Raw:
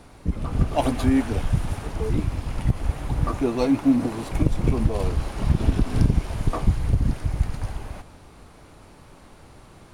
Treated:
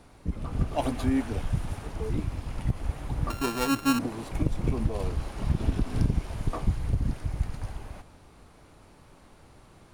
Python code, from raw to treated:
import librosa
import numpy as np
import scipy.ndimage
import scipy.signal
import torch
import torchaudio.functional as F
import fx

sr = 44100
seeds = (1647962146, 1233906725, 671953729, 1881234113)

y = fx.sample_sort(x, sr, block=32, at=(3.3, 3.99))
y = y * librosa.db_to_amplitude(-6.0)